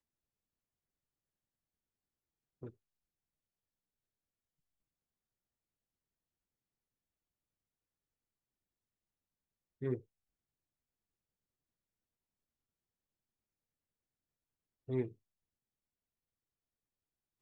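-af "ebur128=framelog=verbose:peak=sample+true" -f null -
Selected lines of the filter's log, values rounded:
Integrated loudness:
  I:         -40.3 LUFS
  Threshold: -52.3 LUFS
Loudness range:
  LRA:        14.9 LU
  Threshold: -70.0 LUFS
  LRA low:   -62.4 LUFS
  LRA high:  -47.5 LUFS
Sample peak:
  Peak:      -24.4 dBFS
True peak:
  Peak:      -24.4 dBFS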